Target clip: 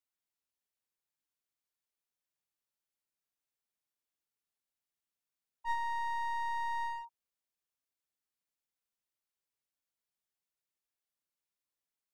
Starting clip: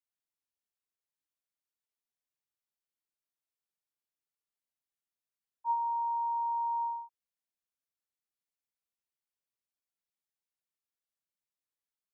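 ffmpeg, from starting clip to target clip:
ffmpeg -i in.wav -af "aeval=exprs='clip(val(0),-1,0.00531)':channel_layout=same" out.wav

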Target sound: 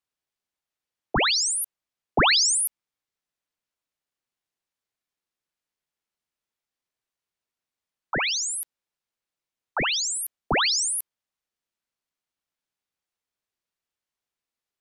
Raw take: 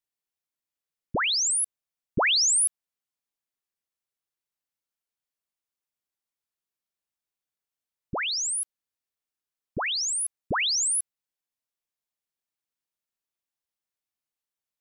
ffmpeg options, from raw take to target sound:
ffmpeg -i in.wav -af "highshelf=frequency=8400:gain=-11,aeval=exprs='val(0)*sin(2*PI*840*n/s+840*0.35/4.8*sin(2*PI*4.8*n/s))':channel_layout=same,volume=7.5dB" out.wav

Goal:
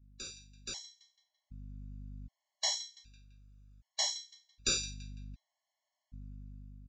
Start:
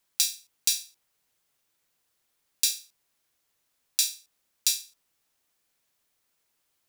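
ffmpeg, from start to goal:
ffmpeg -i in.wav -filter_complex "[0:a]aeval=exprs='val(0)+0.000631*(sin(2*PI*50*n/s)+sin(2*PI*2*50*n/s)/2+sin(2*PI*3*50*n/s)/3+sin(2*PI*4*50*n/s)/4+sin(2*PI*5*50*n/s)/5)':channel_layout=same,asettb=1/sr,asplit=3[link_01][link_02][link_03];[link_01]atrim=end=2.754[link_04];[link_02]atrim=start=2.75:end=4.76,asetpts=PTS-STARTPTS,afade=type=in:duration=0.004:curve=qsin,afade=type=out:start_time=2.006:duration=0.004:curve=qsin,lowshelf=frequency=500:gain=-11.5[link_05];[link_03]atrim=start=4.756[link_06];[link_04][link_05]acrossfade=duration=0.004:curve1=hsin:curve2=qsin[link_07];[link_07][link_06]acrossfade=duration=0.004:curve1=qsin:curve2=hsin,afftdn=noise_reduction=15:noise_floor=-67,asplit=2[link_08][link_09];[link_09]adelay=168,lowpass=frequency=2700:poles=1,volume=-19.5dB,asplit=2[link_10][link_11];[link_11]adelay=168,lowpass=frequency=2700:poles=1,volume=0.51,asplit=2[link_12][link_13];[link_13]adelay=168,lowpass=frequency=2700:poles=1,volume=0.51,asplit=2[link_14][link_15];[link_15]adelay=168,lowpass=frequency=2700:poles=1,volume=0.51[link_16];[link_08][link_10][link_12][link_14][link_16]amix=inputs=5:normalize=0,asoftclip=type=tanh:threshold=-31.5dB,tiltshelf=frequency=700:gain=6,aresample=16000,aresample=44100,dynaudnorm=framelen=220:gausssize=11:maxgain=14.5dB,afftfilt=real='re*gt(sin(2*PI*0.65*pts/sr)*(1-2*mod(floor(b*sr/1024/570),2)),0)':imag='im*gt(sin(2*PI*0.65*pts/sr)*(1-2*mod(floor(b*sr/1024/570),2)),0)':win_size=1024:overlap=0.75" out.wav

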